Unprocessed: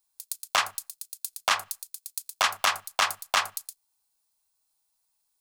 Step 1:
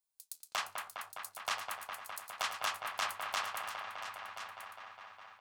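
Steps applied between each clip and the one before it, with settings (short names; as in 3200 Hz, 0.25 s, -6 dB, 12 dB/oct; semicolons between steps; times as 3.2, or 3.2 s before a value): dark delay 0.205 s, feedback 81%, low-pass 2600 Hz, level -5 dB; flange 0.68 Hz, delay 8.1 ms, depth 8.3 ms, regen -69%; echo 1.034 s -11.5 dB; gain -8 dB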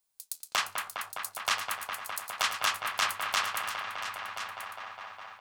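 dynamic EQ 710 Hz, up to -6 dB, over -51 dBFS, Q 1.3; gain +8.5 dB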